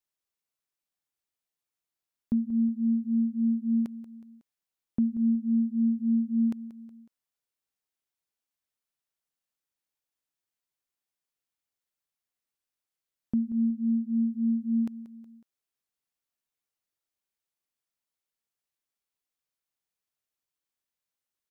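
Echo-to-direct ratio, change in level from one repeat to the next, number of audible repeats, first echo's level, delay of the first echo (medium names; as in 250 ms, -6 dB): -14.0 dB, -6.0 dB, 3, -15.0 dB, 184 ms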